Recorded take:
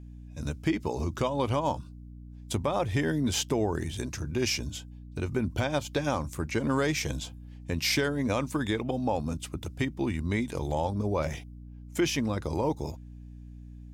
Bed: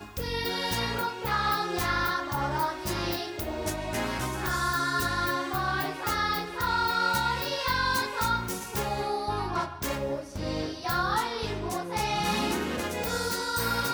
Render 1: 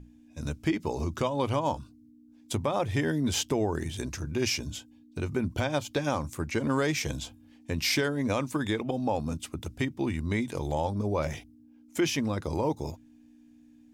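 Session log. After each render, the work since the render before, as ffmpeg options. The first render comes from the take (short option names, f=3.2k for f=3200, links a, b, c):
-af "bandreject=f=60:t=h:w=6,bandreject=f=120:t=h:w=6,bandreject=f=180:t=h:w=6"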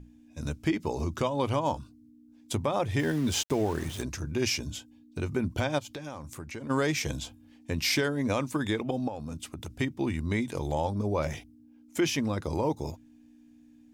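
-filter_complex "[0:a]asettb=1/sr,asplit=3[a][b][c];[a]atrim=end=2.994[d];[b]atrim=start=2.99:end=4.03,asetpts=PTS-STARTPTS,afade=t=in:d=0.004:c=qsin,afade=t=out:st=1.036:d=0.004:c=qsin,aeval=exprs='val(0)*gte(abs(val(0)),0.0119)':c=same[e];[c]atrim=start=4.026[f];[d][e]acrossfade=d=0.004:c1=hsin:c2=qsin[g];[g][f]acrossfade=d=0.004:c1=qsin:c2=hsin,asplit=3[h][i][j];[h]afade=t=out:st=5.78:d=0.02[k];[i]acompressor=threshold=-39dB:ratio=3:attack=3.2:release=140:knee=1:detection=peak,afade=t=in:st=5.78:d=0.02,afade=t=out:st=6.69:d=0.02[l];[j]afade=t=in:st=6.69:d=0.02[m];[k][l][m]amix=inputs=3:normalize=0,asplit=3[n][o][p];[n]afade=t=out:st=9.07:d=0.02[q];[o]acompressor=threshold=-33dB:ratio=6:attack=3.2:release=140:knee=1:detection=peak,afade=t=in:st=9.07:d=0.02,afade=t=out:st=9.76:d=0.02[r];[p]afade=t=in:st=9.76:d=0.02[s];[q][r][s]amix=inputs=3:normalize=0"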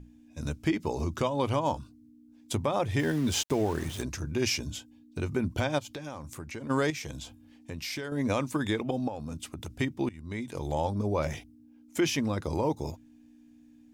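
-filter_complex "[0:a]asettb=1/sr,asplit=3[a][b][c];[a]atrim=end=6.904[d];[b]atrim=start=6.9:end=8.12,asetpts=PTS-STARTPTS,afade=t=in:d=0.004:c=qsin,afade=t=out:st=1.216:d=0.004:c=qsin,acompressor=threshold=-40dB:ratio=2:attack=3.2:release=140:knee=1:detection=peak[e];[c]atrim=start=8.116[f];[d][e]acrossfade=d=0.004:c1=hsin:c2=qsin[g];[g][f]acrossfade=d=0.004:c1=qsin:c2=hsin,asplit=2[h][i];[h]atrim=end=10.09,asetpts=PTS-STARTPTS,afade=t=out:st=10.086:d=0.004:c=hsin:silence=0.105925[j];[i]atrim=start=10.09,asetpts=PTS-STARTPTS,afade=t=in:d=0.72:silence=0.105925[k];[j][k]concat=n=2:v=0:a=1"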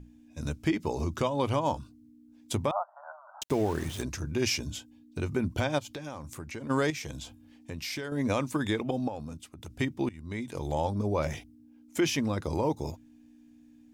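-filter_complex "[0:a]asettb=1/sr,asplit=3[a][b][c];[a]atrim=end=2.714[d];[b]atrim=start=2.71:end=3.42,asetpts=PTS-STARTPTS,afade=t=in:d=0.004:c=qsin,afade=t=out:st=0.706:d=0.004:c=qsin,asuperpass=centerf=930:order=20:qfactor=1.1[e];[c]atrim=start=3.416[f];[d][e]acrossfade=d=0.004:c1=hsin:c2=qsin[g];[g][f]acrossfade=d=0.004:c1=qsin:c2=hsin,asplit=2[h][i];[h]atrim=end=9.5,asetpts=PTS-STARTPTS,afade=t=out:st=9.17:d=0.33:silence=0.298538[j];[i]atrim=start=9.5,asetpts=PTS-STARTPTS,afade=t=in:d=0.33:silence=0.298538[k];[j][k]concat=n=2:v=0:a=1"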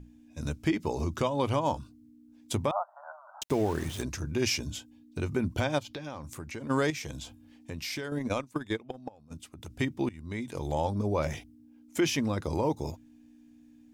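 -filter_complex "[0:a]asettb=1/sr,asplit=3[a][b][c];[a]atrim=end=5.834[d];[b]atrim=start=5.83:end=6.23,asetpts=PTS-STARTPTS,afade=t=in:d=0.004:c=qsin,afade=t=out:st=0.396:d=0.004:c=qsin,highshelf=f=6k:t=q:w=1.5:g=-7[e];[c]atrim=start=6.226[f];[d][e]acrossfade=d=0.004:c1=hsin:c2=qsin[g];[g][f]acrossfade=d=0.004:c1=qsin:c2=hsin,asplit=3[h][i][j];[h]afade=t=out:st=8.18:d=0.02[k];[i]agate=range=-18dB:threshold=-28dB:ratio=16:release=100:detection=peak,afade=t=in:st=8.18:d=0.02,afade=t=out:st=9.3:d=0.02[l];[j]afade=t=in:st=9.3:d=0.02[m];[k][l][m]amix=inputs=3:normalize=0"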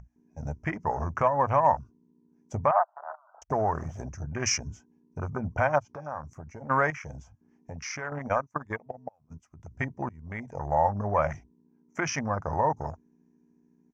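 -af "afwtdn=0.0112,firequalizer=gain_entry='entry(160,0);entry(320,-10);entry(660,9);entry(1300,9);entry(2000,5);entry(3800,-19);entry(5900,10);entry(9000,-16)':delay=0.05:min_phase=1"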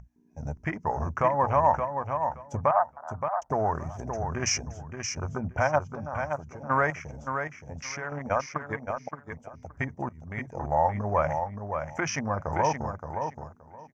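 -af "aecho=1:1:572|1144|1716:0.473|0.0804|0.0137"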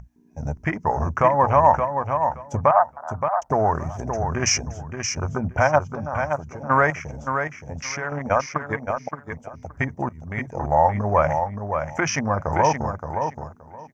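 -af "volume=6.5dB"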